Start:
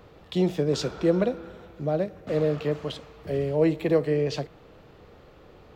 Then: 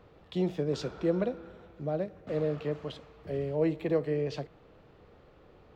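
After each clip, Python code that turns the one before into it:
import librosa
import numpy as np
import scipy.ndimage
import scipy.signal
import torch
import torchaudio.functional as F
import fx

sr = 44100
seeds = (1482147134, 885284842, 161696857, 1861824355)

y = fx.high_shelf(x, sr, hz=5400.0, db=-9.0)
y = F.gain(torch.from_numpy(y), -6.0).numpy()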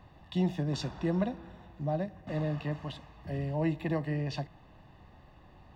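y = x + 0.78 * np.pad(x, (int(1.1 * sr / 1000.0), 0))[:len(x)]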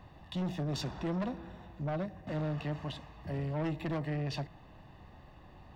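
y = 10.0 ** (-32.0 / 20.0) * np.tanh(x / 10.0 ** (-32.0 / 20.0))
y = F.gain(torch.from_numpy(y), 1.5).numpy()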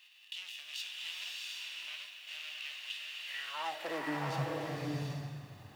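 y = fx.envelope_flatten(x, sr, power=0.6)
y = fx.filter_sweep_highpass(y, sr, from_hz=2800.0, to_hz=110.0, start_s=3.21, end_s=4.46, q=4.7)
y = fx.rev_bloom(y, sr, seeds[0], attack_ms=730, drr_db=-2.0)
y = F.gain(torch.from_numpy(y), -7.0).numpy()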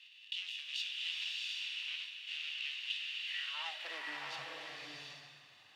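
y = fx.bandpass_q(x, sr, hz=3200.0, q=1.3)
y = F.gain(torch.from_numpy(y), 3.5).numpy()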